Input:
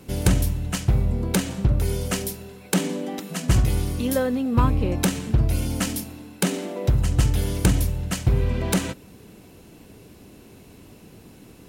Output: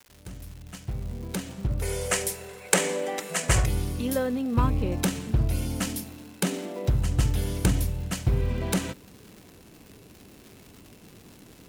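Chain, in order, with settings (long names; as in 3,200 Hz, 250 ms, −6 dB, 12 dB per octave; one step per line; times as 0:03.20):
fade in at the beginning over 2.63 s
0:01.82–0:03.66: octave-band graphic EQ 250/500/1,000/2,000/8,000 Hz −10/+10/+4/+10/+11 dB
surface crackle 270 per second −35 dBFS
level −4 dB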